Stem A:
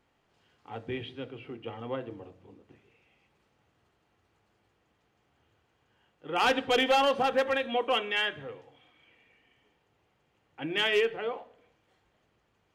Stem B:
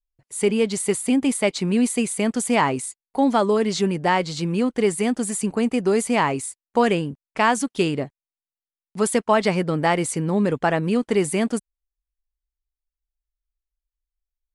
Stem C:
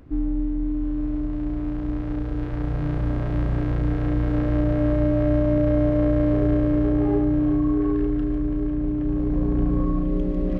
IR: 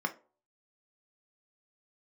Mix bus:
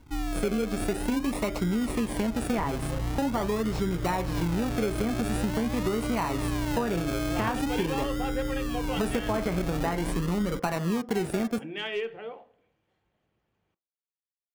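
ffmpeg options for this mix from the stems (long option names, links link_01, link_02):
-filter_complex "[0:a]highshelf=frequency=4000:gain=-8.5,adelay=1000,volume=-3.5dB,asplit=2[link_01][link_02];[link_02]volume=-16dB[link_03];[1:a]aeval=exprs='val(0)*gte(abs(val(0)),0.0211)':channel_layout=same,volume=-5dB,asplit=2[link_04][link_05];[link_05]volume=-6.5dB[link_06];[2:a]equalizer=frequency=2300:width=0.38:gain=-11.5,volume=-5.5dB[link_07];[link_04][link_07]amix=inputs=2:normalize=0,acrusher=samples=36:mix=1:aa=0.000001:lfo=1:lforange=21.6:lforate=0.45,alimiter=limit=-19dB:level=0:latency=1:release=39,volume=0dB[link_08];[3:a]atrim=start_sample=2205[link_09];[link_03][link_06]amix=inputs=2:normalize=0[link_10];[link_10][link_09]afir=irnorm=-1:irlink=0[link_11];[link_01][link_08][link_11]amix=inputs=3:normalize=0,acompressor=threshold=-24dB:ratio=6"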